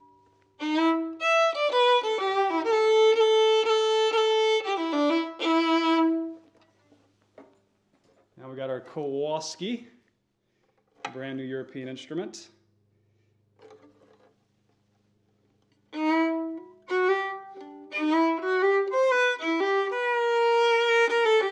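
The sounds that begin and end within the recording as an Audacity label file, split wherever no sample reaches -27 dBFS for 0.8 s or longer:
8.600000	9.750000	sound
11.050000	12.240000	sound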